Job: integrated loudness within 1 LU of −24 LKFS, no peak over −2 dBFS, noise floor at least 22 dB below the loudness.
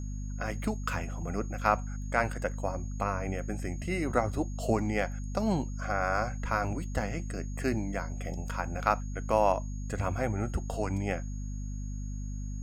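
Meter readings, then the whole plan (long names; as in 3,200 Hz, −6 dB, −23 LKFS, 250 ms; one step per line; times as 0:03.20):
mains hum 50 Hz; hum harmonics up to 250 Hz; level of the hum −34 dBFS; interfering tone 6,600 Hz; level of the tone −53 dBFS; integrated loudness −32.5 LKFS; sample peak −9.0 dBFS; target loudness −24.0 LKFS
→ mains-hum notches 50/100/150/200/250 Hz
notch filter 6,600 Hz, Q 30
level +8.5 dB
brickwall limiter −2 dBFS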